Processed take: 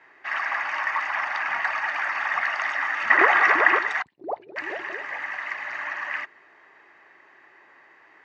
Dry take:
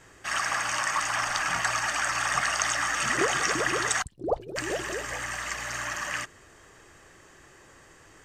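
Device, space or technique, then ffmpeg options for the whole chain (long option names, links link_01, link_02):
phone earpiece: -filter_complex "[0:a]asettb=1/sr,asplit=3[link_01][link_02][link_03];[link_01]atrim=end=3.104[link_04];[link_02]atrim=start=3.1:end=3.79,asetpts=PTS-STARTPTS,afade=type=in:duration=0.004:curve=qsin,afade=type=out:start_time=0.686:duration=0.004:curve=qsin,equalizer=frequency=870:width=0.33:gain=9.5[link_05];[link_03]atrim=start=3.786[link_06];[link_04][link_05]acrossfade=duration=0.004:curve1=hsin:curve2=qsin[link_07];[link_07][link_06]acrossfade=duration=0.004:curve1=qsin:curve2=hsin,highpass=440,equalizer=frequency=500:width_type=q:width=4:gain=-8,equalizer=frequency=920:width_type=q:width=4:gain=4,equalizer=frequency=1300:width_type=q:width=4:gain=-3,equalizer=frequency=2000:width_type=q:width=4:gain=6,equalizer=frequency=3200:width_type=q:width=4:gain=-9,lowpass=frequency=3400:width=0.5412,lowpass=frequency=3400:width=1.3066,volume=1dB"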